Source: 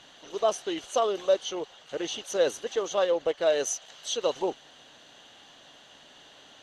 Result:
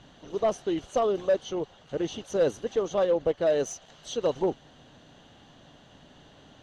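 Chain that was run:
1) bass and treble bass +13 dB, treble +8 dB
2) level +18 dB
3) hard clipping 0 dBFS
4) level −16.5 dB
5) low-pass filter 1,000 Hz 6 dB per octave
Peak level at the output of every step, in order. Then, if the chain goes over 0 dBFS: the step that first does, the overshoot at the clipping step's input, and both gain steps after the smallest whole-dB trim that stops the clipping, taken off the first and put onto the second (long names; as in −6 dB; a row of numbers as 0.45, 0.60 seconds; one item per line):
−11.5, +6.5, 0.0, −16.5, −16.5 dBFS
step 2, 6.5 dB
step 2 +11 dB, step 4 −9.5 dB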